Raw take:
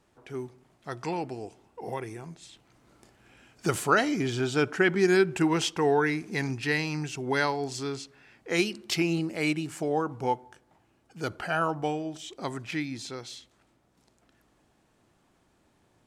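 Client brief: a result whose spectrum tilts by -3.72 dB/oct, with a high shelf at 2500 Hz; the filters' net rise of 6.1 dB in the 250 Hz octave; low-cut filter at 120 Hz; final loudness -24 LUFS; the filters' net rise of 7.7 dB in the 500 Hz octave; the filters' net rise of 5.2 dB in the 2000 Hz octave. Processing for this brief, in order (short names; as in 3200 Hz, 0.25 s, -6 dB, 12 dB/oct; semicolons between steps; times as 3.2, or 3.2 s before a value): HPF 120 Hz; bell 250 Hz +5 dB; bell 500 Hz +8 dB; bell 2000 Hz +4 dB; high shelf 2500 Hz +4.5 dB; gain -1.5 dB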